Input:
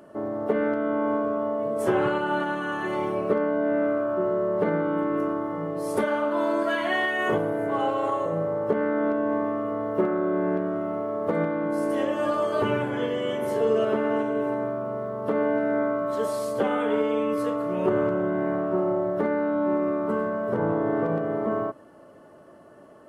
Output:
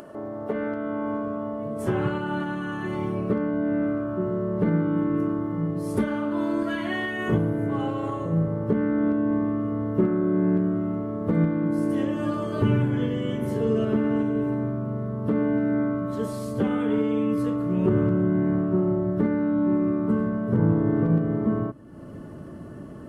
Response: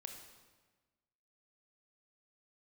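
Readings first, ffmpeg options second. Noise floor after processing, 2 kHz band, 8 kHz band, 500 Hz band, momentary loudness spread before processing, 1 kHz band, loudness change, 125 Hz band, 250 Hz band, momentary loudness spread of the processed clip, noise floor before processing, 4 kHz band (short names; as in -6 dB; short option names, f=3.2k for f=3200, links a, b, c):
-39 dBFS, -4.5 dB, n/a, -4.5 dB, 4 LU, -6.0 dB, +0.5 dB, +11.0 dB, +4.5 dB, 7 LU, -50 dBFS, -4.0 dB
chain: -af "acompressor=mode=upward:threshold=-31dB:ratio=2.5,asubboost=boost=8.5:cutoff=210,volume=-3.5dB"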